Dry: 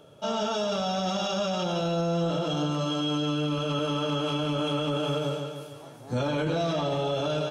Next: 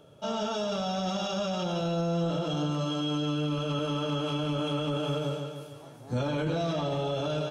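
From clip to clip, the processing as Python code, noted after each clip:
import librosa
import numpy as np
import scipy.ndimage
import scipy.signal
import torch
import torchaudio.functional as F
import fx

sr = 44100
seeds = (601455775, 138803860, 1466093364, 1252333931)

y = fx.low_shelf(x, sr, hz=210.0, db=4.5)
y = y * 10.0 ** (-3.5 / 20.0)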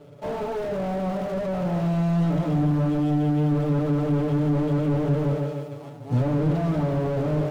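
y = scipy.ndimage.median_filter(x, 25, mode='constant')
y = y + 0.82 * np.pad(y, (int(7.0 * sr / 1000.0), 0))[:len(y)]
y = fx.slew_limit(y, sr, full_power_hz=15.0)
y = y * 10.0 ** (5.5 / 20.0)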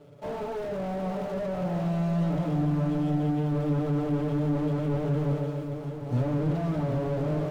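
y = x + 10.0 ** (-9.0 / 20.0) * np.pad(x, (int(761 * sr / 1000.0), 0))[:len(x)]
y = y * 10.0 ** (-4.5 / 20.0)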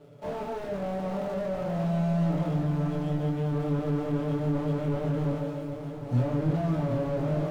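y = fx.doubler(x, sr, ms=25.0, db=-4)
y = y * 10.0 ** (-1.5 / 20.0)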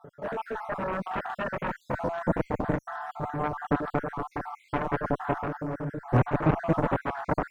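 y = fx.spec_dropout(x, sr, seeds[0], share_pct=55)
y = fx.high_shelf_res(y, sr, hz=2100.0, db=-9.0, q=3.0)
y = fx.cheby_harmonics(y, sr, harmonics=(7,), levels_db=(-8,), full_scale_db=-15.5)
y = y * 10.0 ** (2.0 / 20.0)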